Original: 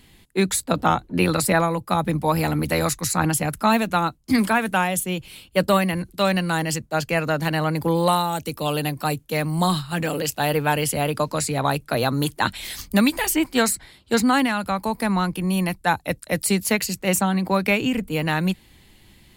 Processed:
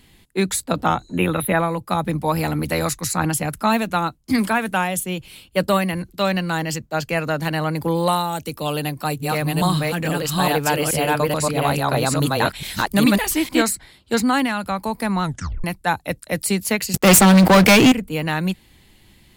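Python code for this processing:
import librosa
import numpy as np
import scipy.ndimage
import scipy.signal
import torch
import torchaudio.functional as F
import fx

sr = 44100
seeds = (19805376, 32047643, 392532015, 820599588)

y = fx.spec_repair(x, sr, seeds[0], start_s=1.03, length_s=0.7, low_hz=3900.0, high_hz=9900.0, source='both')
y = fx.peak_eq(y, sr, hz=9600.0, db=-11.5, octaves=0.22, at=(6.05, 7.04))
y = fx.reverse_delay(y, sr, ms=430, wet_db=0.0, at=(8.76, 13.62))
y = fx.leveller(y, sr, passes=5, at=(16.94, 17.92))
y = fx.edit(y, sr, fx.tape_stop(start_s=15.23, length_s=0.41), tone=tone)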